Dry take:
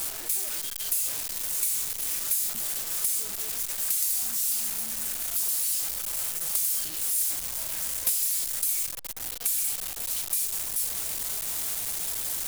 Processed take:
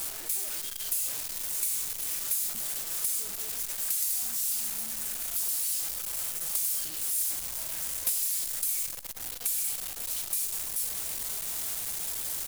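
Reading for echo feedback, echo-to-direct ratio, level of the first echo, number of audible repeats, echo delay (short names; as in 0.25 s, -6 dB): 22%, -13.5 dB, -13.5 dB, 2, 0.102 s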